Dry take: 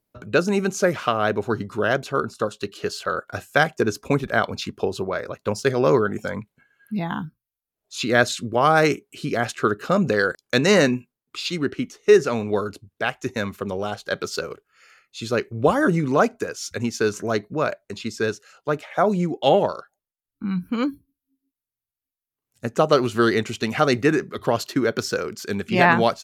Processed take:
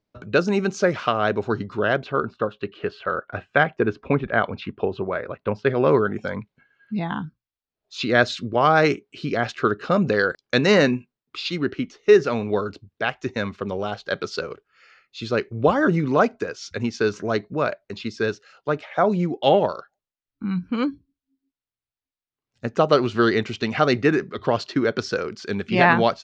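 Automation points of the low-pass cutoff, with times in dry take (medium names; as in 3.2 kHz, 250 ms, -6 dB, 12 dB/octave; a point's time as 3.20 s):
low-pass 24 dB/octave
1.53 s 5.7 kHz
2.38 s 3 kHz
5.60 s 3 kHz
6.36 s 5.2 kHz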